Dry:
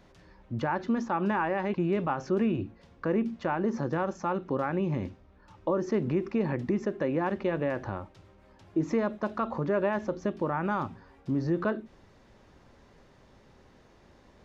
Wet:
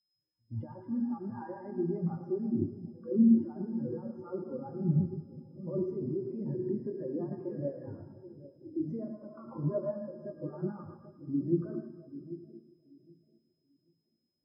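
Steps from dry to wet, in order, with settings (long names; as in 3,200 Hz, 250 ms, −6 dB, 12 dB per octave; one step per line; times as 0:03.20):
high-pass filter 89 Hz 6 dB per octave
echo ahead of the sound 122 ms −19.5 dB
brickwall limiter −27.5 dBFS, peak gain reduction 11.5 dB
steady tone 5,100 Hz −52 dBFS
flanger 1.4 Hz, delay 4.9 ms, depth 3.8 ms, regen +73%
harmonic generator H 6 −23 dB, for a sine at −28 dBFS
echo with a time of its own for lows and highs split 600 Hz, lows 786 ms, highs 113 ms, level −6 dB
on a send at −1 dB: convolution reverb RT60 3.3 s, pre-delay 5 ms
on the sum: every bin expanded away from the loudest bin 2.5 to 1
level +8 dB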